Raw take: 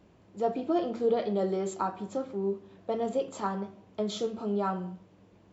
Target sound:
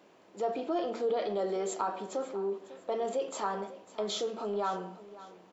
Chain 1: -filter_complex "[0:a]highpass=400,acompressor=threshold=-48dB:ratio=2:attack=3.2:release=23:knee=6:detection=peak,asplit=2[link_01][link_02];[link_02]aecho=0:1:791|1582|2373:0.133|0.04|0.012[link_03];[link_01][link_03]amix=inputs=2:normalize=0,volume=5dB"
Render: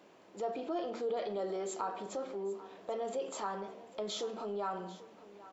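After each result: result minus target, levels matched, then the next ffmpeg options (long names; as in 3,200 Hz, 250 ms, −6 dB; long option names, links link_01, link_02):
echo 242 ms late; downward compressor: peak gain reduction +4.5 dB
-filter_complex "[0:a]highpass=400,acompressor=threshold=-48dB:ratio=2:attack=3.2:release=23:knee=6:detection=peak,asplit=2[link_01][link_02];[link_02]aecho=0:1:549|1098|1647:0.133|0.04|0.012[link_03];[link_01][link_03]amix=inputs=2:normalize=0,volume=5dB"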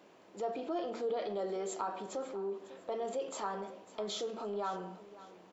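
downward compressor: peak gain reduction +4.5 dB
-filter_complex "[0:a]highpass=400,acompressor=threshold=-38.5dB:ratio=2:attack=3.2:release=23:knee=6:detection=peak,asplit=2[link_01][link_02];[link_02]aecho=0:1:549|1098|1647:0.133|0.04|0.012[link_03];[link_01][link_03]amix=inputs=2:normalize=0,volume=5dB"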